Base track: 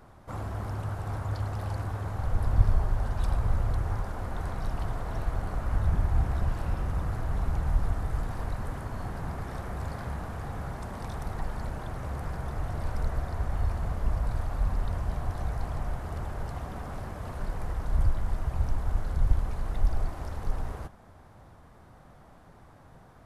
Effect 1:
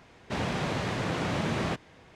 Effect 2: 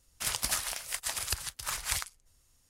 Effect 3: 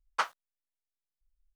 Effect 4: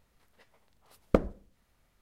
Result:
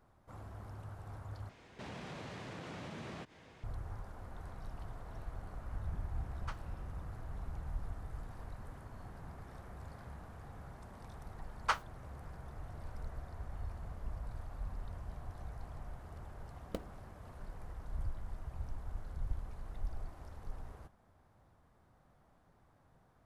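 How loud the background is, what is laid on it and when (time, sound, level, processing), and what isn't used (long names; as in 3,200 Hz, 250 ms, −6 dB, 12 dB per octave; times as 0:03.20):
base track −14.5 dB
0:01.49: overwrite with 1 −4 dB + downward compressor 2.5 to 1, threshold −45 dBFS
0:06.29: mix in 3 −18 dB
0:11.50: mix in 3 −2.5 dB
0:15.60: mix in 4 −17.5 dB + gap after every zero crossing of 0.21 ms
not used: 2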